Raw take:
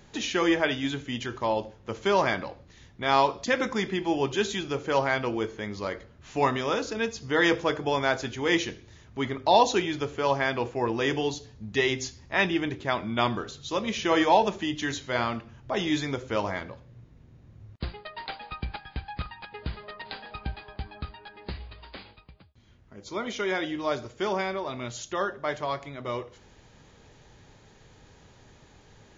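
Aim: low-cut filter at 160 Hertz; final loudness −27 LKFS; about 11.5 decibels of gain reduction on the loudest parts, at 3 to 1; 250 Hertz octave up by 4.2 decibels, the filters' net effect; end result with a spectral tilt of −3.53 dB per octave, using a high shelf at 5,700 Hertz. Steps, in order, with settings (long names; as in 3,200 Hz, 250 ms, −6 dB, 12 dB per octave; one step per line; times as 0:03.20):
high-pass filter 160 Hz
parametric band 250 Hz +6.5 dB
high-shelf EQ 5,700 Hz −6 dB
downward compressor 3 to 1, threshold −31 dBFS
level +7.5 dB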